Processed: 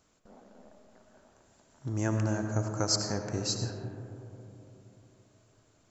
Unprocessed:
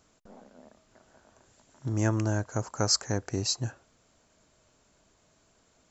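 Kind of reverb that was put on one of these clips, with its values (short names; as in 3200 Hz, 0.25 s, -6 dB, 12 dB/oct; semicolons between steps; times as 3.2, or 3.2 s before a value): digital reverb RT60 3.3 s, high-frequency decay 0.25×, pre-delay 45 ms, DRR 4 dB; gain -3.5 dB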